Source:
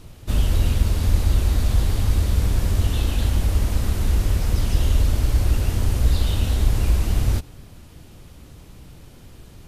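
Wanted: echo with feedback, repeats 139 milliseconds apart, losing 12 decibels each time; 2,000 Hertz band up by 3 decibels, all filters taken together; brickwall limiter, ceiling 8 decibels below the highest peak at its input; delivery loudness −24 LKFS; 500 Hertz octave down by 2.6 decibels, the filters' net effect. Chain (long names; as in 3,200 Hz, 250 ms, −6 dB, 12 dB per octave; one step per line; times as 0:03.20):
parametric band 500 Hz −3.5 dB
parametric band 2,000 Hz +4 dB
brickwall limiter −13.5 dBFS
repeating echo 139 ms, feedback 25%, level −12 dB
level +0.5 dB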